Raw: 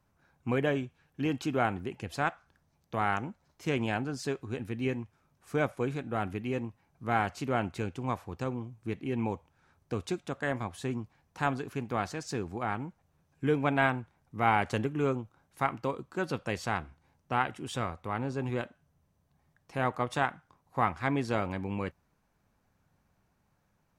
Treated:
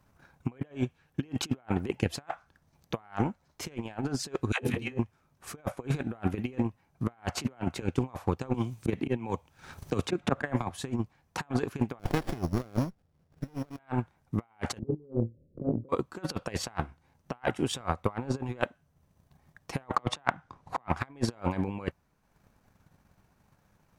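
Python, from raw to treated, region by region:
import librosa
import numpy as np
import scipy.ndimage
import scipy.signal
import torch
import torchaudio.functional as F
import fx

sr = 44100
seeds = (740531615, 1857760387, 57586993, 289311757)

y = fx.chain(x, sr, fx.dispersion(late='lows', ms=109.0, hz=500.0),
    fx.room_flutter(wall_m=5.6, rt60_s=0.25),
    fx.band_squash(depth_pct=100), at=(4.52, 4.99))
y = fx.chain(y, sr, fx.low_shelf(hz=200.0, db=-2.0),
    fx.band_squash(depth_pct=40), at=(7.35, 7.82))
y = fx.chain(y, sr, fx.auto_swell(attack_ms=128.0),
    fx.band_squash(depth_pct=100), at=(8.54, 10.7))
y = fx.chain(y, sr, fx.sample_sort(block=8),
    fx.high_shelf(hz=5900.0, db=6.5),
    fx.running_max(window=33), at=(11.99, 13.79))
y = fx.chain(y, sr, fx.steep_lowpass(hz=550.0, slope=72),
    fx.room_flutter(wall_m=4.5, rt60_s=0.21),
    fx.band_squash(depth_pct=70), at=(14.79, 15.89))
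y = fx.chain(y, sr, fx.air_absorb(metres=65.0),
    fx.band_squash(depth_pct=70), at=(19.96, 20.88))
y = fx.dynamic_eq(y, sr, hz=820.0, q=1.1, threshold_db=-42.0, ratio=4.0, max_db=4)
y = fx.over_compress(y, sr, threshold_db=-36.0, ratio=-0.5)
y = fx.transient(y, sr, attack_db=9, sustain_db=-5)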